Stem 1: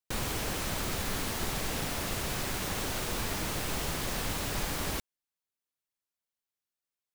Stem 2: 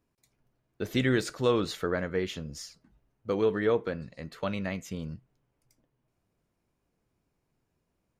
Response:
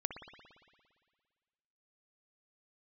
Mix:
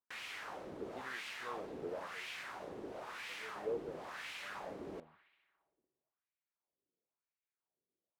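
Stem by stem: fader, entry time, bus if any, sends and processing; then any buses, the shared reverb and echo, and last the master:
−5.0 dB, 0.00 s, send −11 dB, bit reduction 6 bits
−11.0 dB, 0.00 s, no send, no processing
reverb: on, RT60 1.8 s, pre-delay 57 ms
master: LFO wah 0.98 Hz 360–2,500 Hz, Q 2.3

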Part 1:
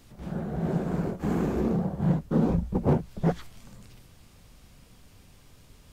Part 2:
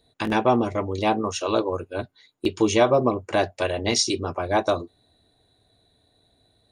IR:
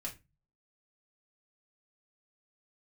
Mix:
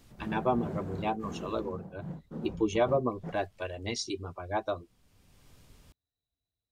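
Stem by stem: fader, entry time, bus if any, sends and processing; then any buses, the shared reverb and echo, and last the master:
−3.5 dB, 0.00 s, no send, automatic ducking −13 dB, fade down 1.75 s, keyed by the second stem
−6.5 dB, 0.00 s, no send, spectral dynamics exaggerated over time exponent 1.5; low-pass filter 2,900 Hz 6 dB per octave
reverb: not used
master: no processing

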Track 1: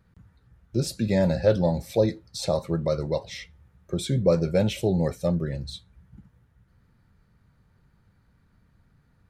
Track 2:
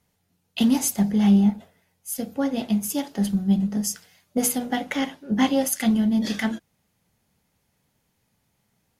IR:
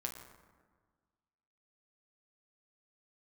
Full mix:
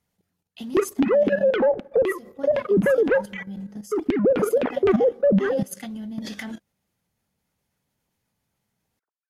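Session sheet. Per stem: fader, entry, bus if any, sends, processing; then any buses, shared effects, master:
−1.0 dB, 0.00 s, send −22.5 dB, three sine waves on the formant tracks; leveller curve on the samples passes 5; auto-filter low-pass saw down 3.9 Hz 260–3,000 Hz
−2.0 dB, 0.00 s, no send, automatic ducking −7 dB, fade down 0.55 s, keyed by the first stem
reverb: on, RT60 1.5 s, pre-delay 7 ms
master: output level in coarse steps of 11 dB; brickwall limiter −12.5 dBFS, peak gain reduction 9.5 dB

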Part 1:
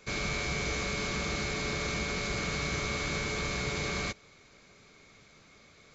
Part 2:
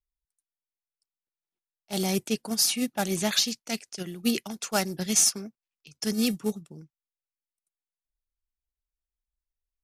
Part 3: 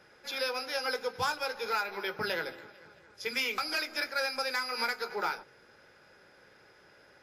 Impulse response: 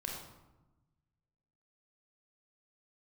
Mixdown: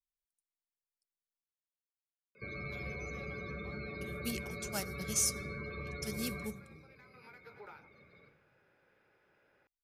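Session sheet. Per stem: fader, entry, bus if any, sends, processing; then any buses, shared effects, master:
−5.5 dB, 2.35 s, send −3 dB, high-pass filter 69 Hz; downward compressor 2 to 1, threshold −41 dBFS, peak gain reduction 6.5 dB; spectral peaks only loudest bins 32
−15.0 dB, 0.00 s, muted 0:01.41–0:04.01, send −19.5 dB, high-shelf EQ 6,200 Hz +8.5 dB
−11.0 dB, 2.45 s, no send, thirty-one-band graphic EQ 2,500 Hz +6 dB, 5,000 Hz −6 dB, 12,500 Hz +10 dB; downward compressor 6 to 1, threshold −37 dBFS, peak gain reduction 12 dB; parametric band 11,000 Hz −14 dB 2.2 octaves; automatic ducking −12 dB, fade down 1.35 s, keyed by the second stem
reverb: on, RT60 1.0 s, pre-delay 28 ms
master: no processing

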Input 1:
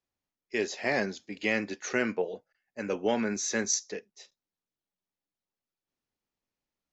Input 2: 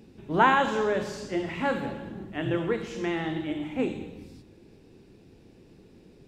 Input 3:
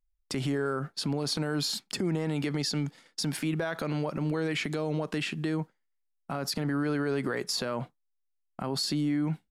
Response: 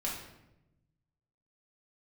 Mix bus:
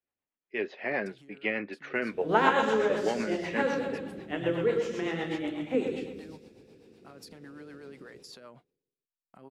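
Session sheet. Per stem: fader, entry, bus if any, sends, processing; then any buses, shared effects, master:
+1.0 dB, 0.00 s, no send, no echo send, low-pass filter 2,900 Hz 24 dB per octave
−3.0 dB, 1.95 s, send −6.5 dB, echo send −4 dB, high-pass filter 50 Hz; parametric band 480 Hz +6.5 dB 0.33 octaves
−14.0 dB, 0.75 s, no send, no echo send, automatic ducking −9 dB, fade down 1.50 s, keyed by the first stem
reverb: on, RT60 0.90 s, pre-delay 4 ms
echo: repeating echo 118 ms, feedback 50%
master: low-shelf EQ 180 Hz −10.5 dB; rotating-speaker cabinet horn 8 Hz

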